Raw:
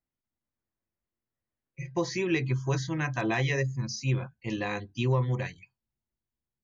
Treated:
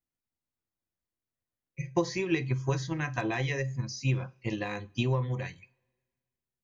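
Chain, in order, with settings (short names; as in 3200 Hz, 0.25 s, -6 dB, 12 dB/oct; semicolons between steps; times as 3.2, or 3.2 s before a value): transient shaper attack +8 dB, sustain +3 dB; two-slope reverb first 0.29 s, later 1.7 s, from -26 dB, DRR 13.5 dB; gain -4.5 dB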